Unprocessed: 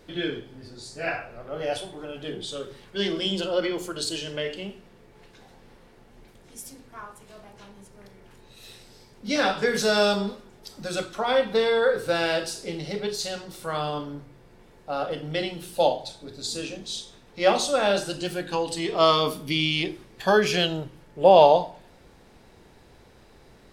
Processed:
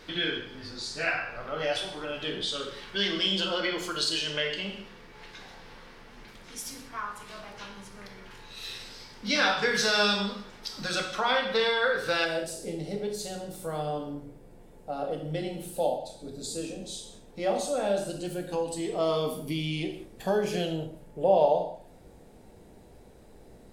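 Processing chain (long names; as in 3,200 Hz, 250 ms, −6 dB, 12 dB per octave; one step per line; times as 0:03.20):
flat-topped bell 2,400 Hz +8 dB 2.9 octaves, from 0:12.24 −8.5 dB
downward compressor 1.5 to 1, threshold −36 dBFS, peak gain reduction 9 dB
reverb whose tail is shaped and stops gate 230 ms falling, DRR 4.5 dB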